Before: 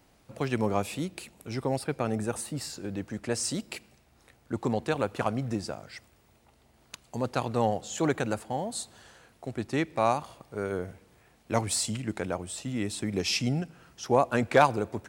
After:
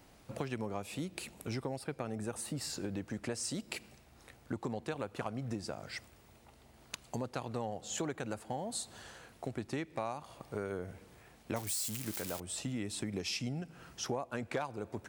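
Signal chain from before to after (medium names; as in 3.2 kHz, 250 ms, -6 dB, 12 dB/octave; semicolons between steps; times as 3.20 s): 11.56–12.40 s: zero-crossing glitches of -20.5 dBFS; compression 6:1, threshold -37 dBFS, peak gain reduction 20.5 dB; trim +2 dB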